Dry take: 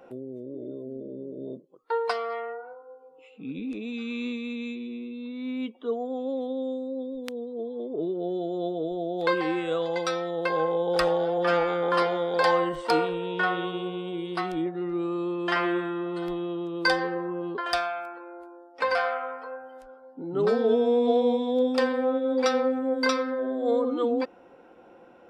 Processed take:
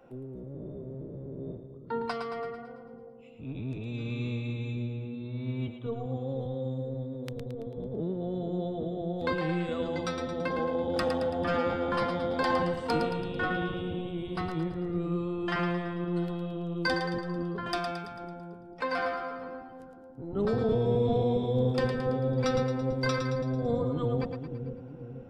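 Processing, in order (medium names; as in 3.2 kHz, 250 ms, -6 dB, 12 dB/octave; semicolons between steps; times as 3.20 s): octave divider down 1 oct, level +4 dB; two-band feedback delay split 460 Hz, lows 487 ms, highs 111 ms, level -7 dB; trim -6.5 dB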